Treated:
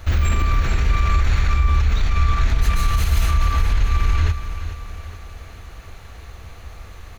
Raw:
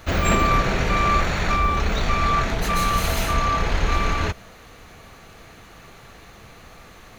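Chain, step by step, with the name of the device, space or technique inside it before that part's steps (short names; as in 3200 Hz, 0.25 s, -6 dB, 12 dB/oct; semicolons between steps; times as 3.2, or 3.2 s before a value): car stereo with a boomy subwoofer (resonant low shelf 110 Hz +11 dB, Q 1.5; limiter -9.5 dBFS, peak gain reduction 10 dB); dynamic EQ 630 Hz, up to -8 dB, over -43 dBFS, Q 1.1; feedback echo 0.426 s, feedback 50%, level -11 dB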